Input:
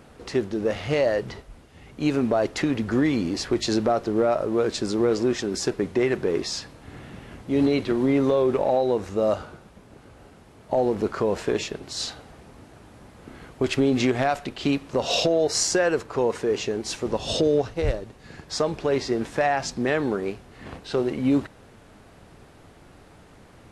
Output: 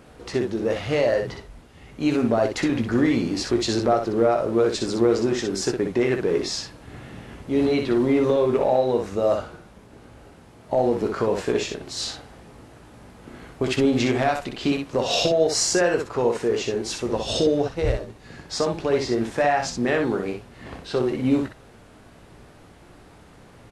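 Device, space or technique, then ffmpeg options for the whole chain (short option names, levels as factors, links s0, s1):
slapback doubling: -filter_complex "[0:a]asplit=3[s0][s1][s2];[s1]adelay=17,volume=0.376[s3];[s2]adelay=62,volume=0.531[s4];[s0][s3][s4]amix=inputs=3:normalize=0"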